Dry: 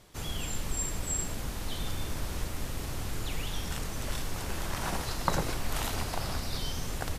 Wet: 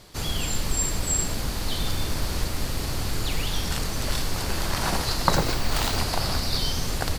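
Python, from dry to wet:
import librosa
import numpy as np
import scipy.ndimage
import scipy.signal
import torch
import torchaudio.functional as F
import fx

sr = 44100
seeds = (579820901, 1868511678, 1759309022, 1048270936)

p1 = fx.peak_eq(x, sr, hz=4500.0, db=7.5, octaves=0.34)
p2 = fx.quant_float(p1, sr, bits=2)
p3 = p1 + (p2 * 10.0 ** (-8.5 / 20.0))
p4 = fx.resample_bad(p3, sr, factor=2, down='filtered', up='hold', at=(5.35, 5.98))
y = p4 * 10.0 ** (4.5 / 20.0)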